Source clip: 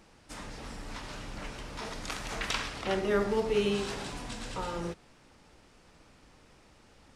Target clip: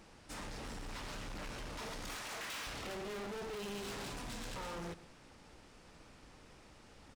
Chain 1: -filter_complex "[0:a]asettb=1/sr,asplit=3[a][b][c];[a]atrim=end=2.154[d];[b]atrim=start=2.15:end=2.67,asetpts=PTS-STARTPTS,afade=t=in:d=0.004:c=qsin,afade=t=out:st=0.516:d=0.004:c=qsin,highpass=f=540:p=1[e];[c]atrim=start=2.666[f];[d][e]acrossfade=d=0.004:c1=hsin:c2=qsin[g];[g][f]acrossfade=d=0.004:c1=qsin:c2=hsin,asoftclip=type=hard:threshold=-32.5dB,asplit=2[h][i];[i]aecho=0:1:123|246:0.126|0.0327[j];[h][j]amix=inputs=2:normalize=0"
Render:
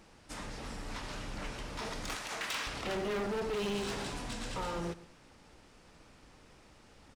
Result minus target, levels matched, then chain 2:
hard clip: distortion -5 dB
-filter_complex "[0:a]asettb=1/sr,asplit=3[a][b][c];[a]atrim=end=2.154[d];[b]atrim=start=2.15:end=2.67,asetpts=PTS-STARTPTS,afade=t=in:d=0.004:c=qsin,afade=t=out:st=0.516:d=0.004:c=qsin,highpass=f=540:p=1[e];[c]atrim=start=2.666[f];[d][e]acrossfade=d=0.004:c1=hsin:c2=qsin[g];[g][f]acrossfade=d=0.004:c1=qsin:c2=hsin,asoftclip=type=hard:threshold=-42dB,asplit=2[h][i];[i]aecho=0:1:123|246:0.126|0.0327[j];[h][j]amix=inputs=2:normalize=0"

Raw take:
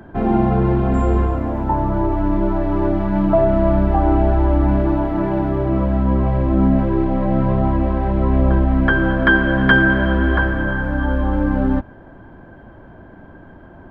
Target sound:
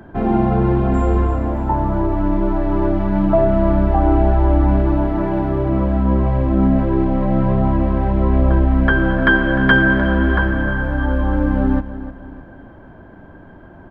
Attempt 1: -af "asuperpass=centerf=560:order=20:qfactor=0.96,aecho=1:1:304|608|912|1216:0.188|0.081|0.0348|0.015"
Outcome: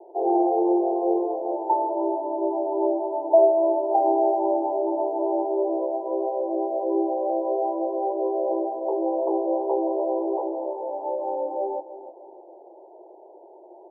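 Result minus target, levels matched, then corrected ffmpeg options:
500 Hz band +7.0 dB
-af "aecho=1:1:304|608|912|1216:0.188|0.081|0.0348|0.015"

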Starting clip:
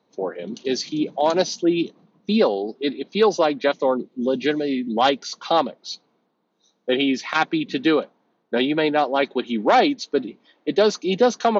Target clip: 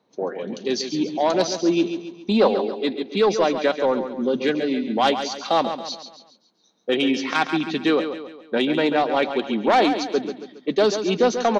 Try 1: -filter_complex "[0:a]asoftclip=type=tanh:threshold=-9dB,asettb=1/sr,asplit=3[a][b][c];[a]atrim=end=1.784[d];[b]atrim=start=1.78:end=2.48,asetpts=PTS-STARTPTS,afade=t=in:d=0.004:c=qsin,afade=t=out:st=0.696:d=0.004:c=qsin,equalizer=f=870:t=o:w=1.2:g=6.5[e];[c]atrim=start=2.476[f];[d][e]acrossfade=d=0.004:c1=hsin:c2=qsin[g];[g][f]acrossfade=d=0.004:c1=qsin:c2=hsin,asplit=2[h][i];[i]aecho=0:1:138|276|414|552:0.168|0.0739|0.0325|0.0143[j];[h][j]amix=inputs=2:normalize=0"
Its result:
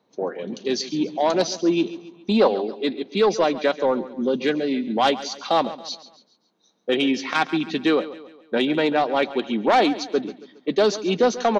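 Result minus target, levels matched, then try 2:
echo-to-direct -6.5 dB
-filter_complex "[0:a]asoftclip=type=tanh:threshold=-9dB,asettb=1/sr,asplit=3[a][b][c];[a]atrim=end=1.784[d];[b]atrim=start=1.78:end=2.48,asetpts=PTS-STARTPTS,afade=t=in:d=0.004:c=qsin,afade=t=out:st=0.696:d=0.004:c=qsin,equalizer=f=870:t=o:w=1.2:g=6.5[e];[c]atrim=start=2.476[f];[d][e]acrossfade=d=0.004:c1=hsin:c2=qsin[g];[g][f]acrossfade=d=0.004:c1=qsin:c2=hsin,asplit=2[h][i];[i]aecho=0:1:138|276|414|552|690:0.355|0.156|0.0687|0.0302|0.0133[j];[h][j]amix=inputs=2:normalize=0"

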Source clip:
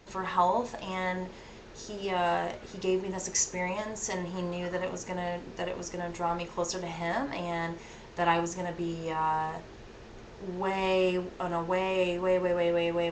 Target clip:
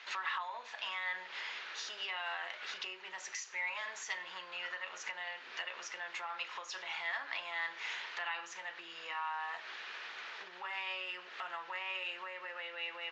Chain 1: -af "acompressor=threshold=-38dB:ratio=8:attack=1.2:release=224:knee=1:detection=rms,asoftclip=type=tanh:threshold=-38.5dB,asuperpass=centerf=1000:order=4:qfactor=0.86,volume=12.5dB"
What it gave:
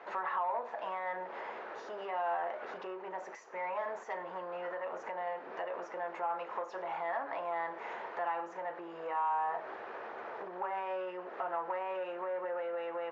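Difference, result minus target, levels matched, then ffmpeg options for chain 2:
soft clip: distortion +18 dB; 2000 Hz band -8.0 dB
-af "acompressor=threshold=-38dB:ratio=8:attack=1.2:release=224:knee=1:detection=rms,asoftclip=type=tanh:threshold=-28dB,asuperpass=centerf=2300:order=4:qfactor=0.86,volume=12.5dB"

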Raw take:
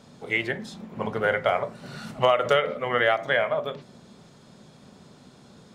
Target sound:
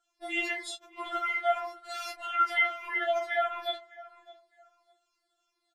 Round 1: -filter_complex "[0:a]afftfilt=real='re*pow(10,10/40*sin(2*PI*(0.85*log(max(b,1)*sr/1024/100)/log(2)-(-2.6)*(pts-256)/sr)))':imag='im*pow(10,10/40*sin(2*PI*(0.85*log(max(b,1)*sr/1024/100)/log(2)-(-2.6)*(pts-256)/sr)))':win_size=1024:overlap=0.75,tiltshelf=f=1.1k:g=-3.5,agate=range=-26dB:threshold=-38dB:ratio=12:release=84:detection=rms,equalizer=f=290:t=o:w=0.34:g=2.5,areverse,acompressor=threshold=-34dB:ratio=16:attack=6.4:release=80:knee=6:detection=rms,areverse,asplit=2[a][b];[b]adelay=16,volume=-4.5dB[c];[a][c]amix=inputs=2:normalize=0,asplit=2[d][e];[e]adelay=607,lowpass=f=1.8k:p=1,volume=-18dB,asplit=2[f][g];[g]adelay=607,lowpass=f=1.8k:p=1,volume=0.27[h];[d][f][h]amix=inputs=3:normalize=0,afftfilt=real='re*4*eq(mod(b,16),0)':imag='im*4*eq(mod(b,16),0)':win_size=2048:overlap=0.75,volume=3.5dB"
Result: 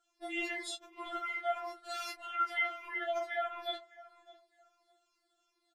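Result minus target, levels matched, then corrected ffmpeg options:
compressor: peak gain reduction +7 dB; 250 Hz band +4.5 dB
-filter_complex "[0:a]afftfilt=real='re*pow(10,10/40*sin(2*PI*(0.85*log(max(b,1)*sr/1024/100)/log(2)-(-2.6)*(pts-256)/sr)))':imag='im*pow(10,10/40*sin(2*PI*(0.85*log(max(b,1)*sr/1024/100)/log(2)-(-2.6)*(pts-256)/sr)))':win_size=1024:overlap=0.75,tiltshelf=f=1.1k:g=-3.5,agate=range=-26dB:threshold=-38dB:ratio=12:release=84:detection=rms,equalizer=f=290:t=o:w=0.34:g=-9,areverse,acompressor=threshold=-26.5dB:ratio=16:attack=6.4:release=80:knee=6:detection=rms,areverse,asplit=2[a][b];[b]adelay=16,volume=-4.5dB[c];[a][c]amix=inputs=2:normalize=0,asplit=2[d][e];[e]adelay=607,lowpass=f=1.8k:p=1,volume=-18dB,asplit=2[f][g];[g]adelay=607,lowpass=f=1.8k:p=1,volume=0.27[h];[d][f][h]amix=inputs=3:normalize=0,afftfilt=real='re*4*eq(mod(b,16),0)':imag='im*4*eq(mod(b,16),0)':win_size=2048:overlap=0.75,volume=3.5dB"

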